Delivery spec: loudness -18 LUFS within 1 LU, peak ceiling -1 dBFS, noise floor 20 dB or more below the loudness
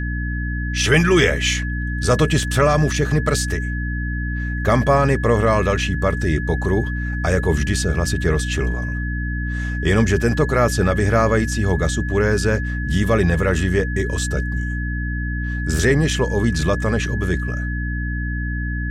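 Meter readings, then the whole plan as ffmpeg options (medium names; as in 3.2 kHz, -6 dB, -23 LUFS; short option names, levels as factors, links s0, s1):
hum 60 Hz; highest harmonic 300 Hz; hum level -21 dBFS; steady tone 1.7 kHz; tone level -29 dBFS; loudness -20.0 LUFS; peak level -3.5 dBFS; loudness target -18.0 LUFS
-> -af "bandreject=f=60:t=h:w=4,bandreject=f=120:t=h:w=4,bandreject=f=180:t=h:w=4,bandreject=f=240:t=h:w=4,bandreject=f=300:t=h:w=4"
-af "bandreject=f=1700:w=30"
-af "volume=1.26"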